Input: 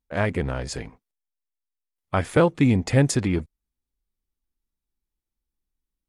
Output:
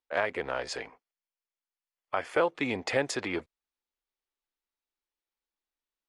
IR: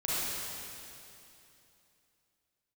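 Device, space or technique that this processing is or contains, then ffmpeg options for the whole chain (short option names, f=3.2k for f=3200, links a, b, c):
DJ mixer with the lows and highs turned down: -filter_complex "[0:a]acrossover=split=400 5300:gain=0.0631 1 0.2[a][b][c];[a][b][c]amix=inputs=3:normalize=0,alimiter=limit=-15.5dB:level=0:latency=1:release=382,asettb=1/sr,asplit=3[d][e][f];[d]atrim=end=0.834[g];[e]atrim=start=0.83:end=2.43,asetpts=PTS-STARTPTS,afade=t=in:d=0.004:c=qsin,afade=t=out:st=1.596:d=0.004:c=qsin,bandreject=f=3.8k:w=6.2[h];[f]atrim=start=2.426[i];[g][h]acrossfade=d=0.004:c1=hsin:c2=qsin[j];[j][i]acrossfade=d=0.004:c1=qsin:c2=hsin,volume=1.5dB"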